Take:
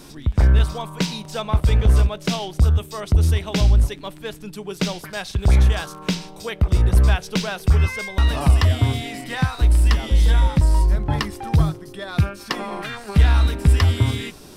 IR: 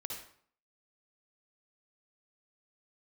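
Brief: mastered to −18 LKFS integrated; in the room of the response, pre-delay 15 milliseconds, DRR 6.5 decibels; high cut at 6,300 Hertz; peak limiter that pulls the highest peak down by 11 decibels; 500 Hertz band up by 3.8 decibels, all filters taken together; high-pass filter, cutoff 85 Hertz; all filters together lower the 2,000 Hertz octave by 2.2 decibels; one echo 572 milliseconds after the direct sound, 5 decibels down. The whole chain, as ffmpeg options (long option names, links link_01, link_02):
-filter_complex "[0:a]highpass=85,lowpass=6300,equalizer=frequency=500:width_type=o:gain=5,equalizer=frequency=2000:width_type=o:gain=-3,alimiter=limit=-17dB:level=0:latency=1,aecho=1:1:572:0.562,asplit=2[link_01][link_02];[1:a]atrim=start_sample=2205,adelay=15[link_03];[link_02][link_03]afir=irnorm=-1:irlink=0,volume=-5.5dB[link_04];[link_01][link_04]amix=inputs=2:normalize=0,volume=7dB"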